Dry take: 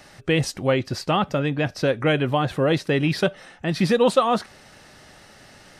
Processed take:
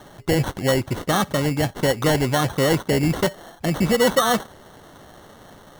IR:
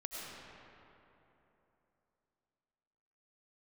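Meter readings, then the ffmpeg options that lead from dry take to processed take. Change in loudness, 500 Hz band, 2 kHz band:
+1.0 dB, 0.0 dB, +1.5 dB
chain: -filter_complex "[0:a]asplit=2[link_01][link_02];[link_02]alimiter=limit=-15.5dB:level=0:latency=1:release=68,volume=0.5dB[link_03];[link_01][link_03]amix=inputs=2:normalize=0,acrusher=samples=18:mix=1:aa=0.000001,volume=-3.5dB"

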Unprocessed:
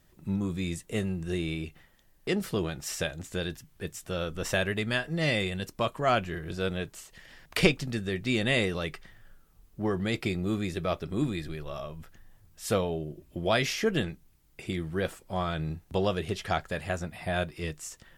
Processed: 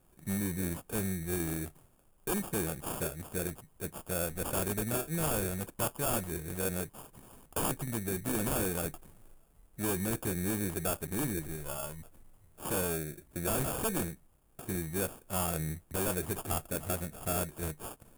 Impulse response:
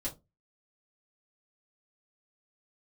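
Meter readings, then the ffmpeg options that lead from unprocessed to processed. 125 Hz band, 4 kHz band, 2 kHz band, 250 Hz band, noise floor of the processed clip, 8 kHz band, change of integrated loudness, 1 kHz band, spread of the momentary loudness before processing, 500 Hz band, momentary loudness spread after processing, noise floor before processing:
−4.0 dB, −10.5 dB, −9.0 dB, −4.5 dB, −65 dBFS, +6.0 dB, −3.5 dB, −5.0 dB, 13 LU, −5.5 dB, 9 LU, −62 dBFS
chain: -af "acrusher=samples=22:mix=1:aa=0.000001,aeval=exprs='0.0631*(abs(mod(val(0)/0.0631+3,4)-2)-1)':channel_layout=same,highshelf=frequency=7100:width_type=q:width=1.5:gain=12,volume=-3dB"

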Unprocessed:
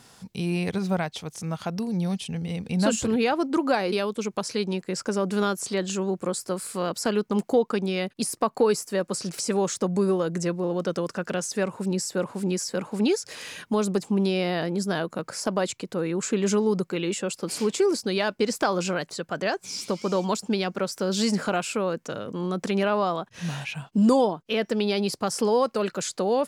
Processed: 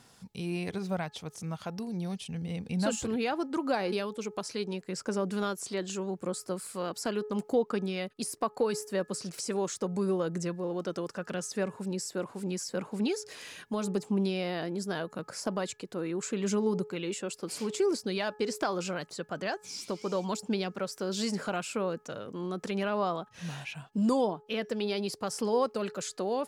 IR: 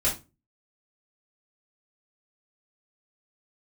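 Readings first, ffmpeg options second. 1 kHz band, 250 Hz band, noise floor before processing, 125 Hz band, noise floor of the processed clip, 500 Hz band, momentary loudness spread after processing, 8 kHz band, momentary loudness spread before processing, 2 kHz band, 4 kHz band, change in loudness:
−6.5 dB, −7.0 dB, −59 dBFS, −7.0 dB, −59 dBFS, −6.5 dB, 8 LU, −7.0 dB, 7 LU, −7.0 dB, −7.0 dB, −7.0 dB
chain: -af "aphaser=in_gain=1:out_gain=1:delay=3:decay=0.21:speed=0.78:type=sinusoidal,bandreject=frequency=424:width_type=h:width=4,bandreject=frequency=848:width_type=h:width=4,bandreject=frequency=1272:width_type=h:width=4,bandreject=frequency=1696:width_type=h:width=4,volume=-7dB"

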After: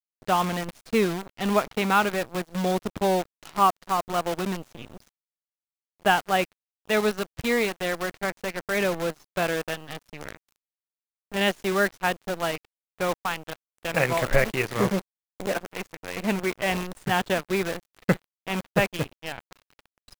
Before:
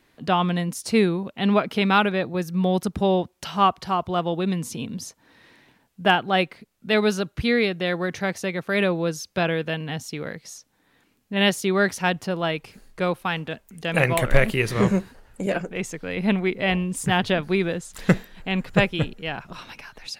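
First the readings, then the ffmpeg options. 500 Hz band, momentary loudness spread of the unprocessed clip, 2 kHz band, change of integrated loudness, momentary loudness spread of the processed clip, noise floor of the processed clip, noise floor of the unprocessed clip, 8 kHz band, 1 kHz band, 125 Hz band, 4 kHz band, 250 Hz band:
−2.5 dB, 11 LU, −2.5 dB, −3.0 dB, 13 LU, below −85 dBFS, −65 dBFS, −1.5 dB, −1.0 dB, −6.5 dB, −4.5 dB, −5.5 dB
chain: -filter_complex "[0:a]aeval=exprs='sgn(val(0))*max(abs(val(0))-0.0211,0)':channel_layout=same,asplit=2[link_01][link_02];[link_02]highpass=frequency=720:poles=1,volume=7dB,asoftclip=type=tanh:threshold=-4dB[link_03];[link_01][link_03]amix=inputs=2:normalize=0,lowpass=frequency=1400:poles=1,volume=-6dB,acrusher=bits=6:dc=4:mix=0:aa=0.000001"

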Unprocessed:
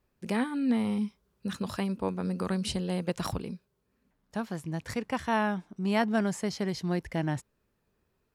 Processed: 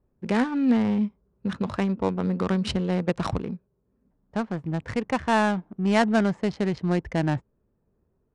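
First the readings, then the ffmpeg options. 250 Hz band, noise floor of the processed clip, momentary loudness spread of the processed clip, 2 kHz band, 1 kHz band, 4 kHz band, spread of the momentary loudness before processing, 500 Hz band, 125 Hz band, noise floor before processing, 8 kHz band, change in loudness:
+6.0 dB, −72 dBFS, 10 LU, +5.5 dB, +5.5 dB, +3.0 dB, 10 LU, +6.0 dB, +6.0 dB, −76 dBFS, −1.5 dB, +5.5 dB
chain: -af "adynamicsmooth=sensitivity=8:basefreq=790,aresample=22050,aresample=44100,volume=6dB"

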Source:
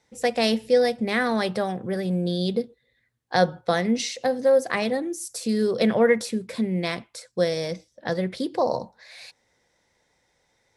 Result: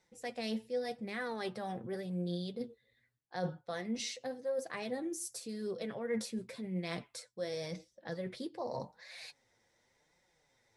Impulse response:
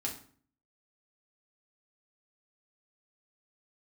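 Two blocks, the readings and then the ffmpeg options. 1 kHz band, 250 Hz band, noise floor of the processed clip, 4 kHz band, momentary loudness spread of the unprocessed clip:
−16.0 dB, −14.5 dB, −76 dBFS, −14.0 dB, 12 LU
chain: -af "areverse,acompressor=threshold=-31dB:ratio=6,areverse,flanger=delay=5.2:depth=4.3:regen=39:speed=0.88:shape=triangular,volume=-1.5dB"

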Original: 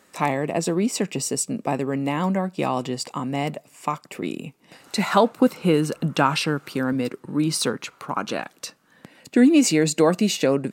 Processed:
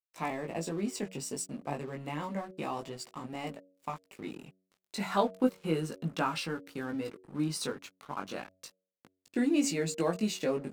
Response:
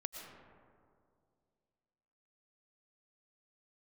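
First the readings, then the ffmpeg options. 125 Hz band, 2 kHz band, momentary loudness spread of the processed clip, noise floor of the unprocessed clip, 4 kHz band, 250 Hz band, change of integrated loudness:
−12.0 dB, −11.5 dB, 13 LU, −59 dBFS, −12.0 dB, −12.0 dB, −12.0 dB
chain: -af "flanger=delay=17.5:depth=3.1:speed=0.31,aeval=exprs='sgn(val(0))*max(abs(val(0))-0.00668,0)':channel_layout=same,bandreject=frequency=93.54:width_type=h:width=4,bandreject=frequency=187.08:width_type=h:width=4,bandreject=frequency=280.62:width_type=h:width=4,bandreject=frequency=374.16:width_type=h:width=4,bandreject=frequency=467.7:width_type=h:width=4,bandreject=frequency=561.24:width_type=h:width=4,bandreject=frequency=654.78:width_type=h:width=4,volume=-8dB"

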